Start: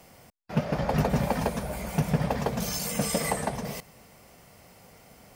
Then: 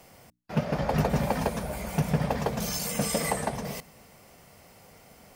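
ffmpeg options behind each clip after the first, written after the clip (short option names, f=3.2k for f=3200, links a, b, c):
-af "bandreject=f=60:t=h:w=6,bandreject=f=120:t=h:w=6,bandreject=f=180:t=h:w=6,bandreject=f=240:t=h:w=6,bandreject=f=300:t=h:w=6"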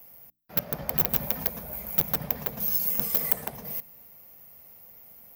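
-af "aeval=exprs='(mod(6.68*val(0)+1,2)-1)/6.68':c=same,aexciter=amount=9.2:drive=8.6:freq=12k,volume=-9dB"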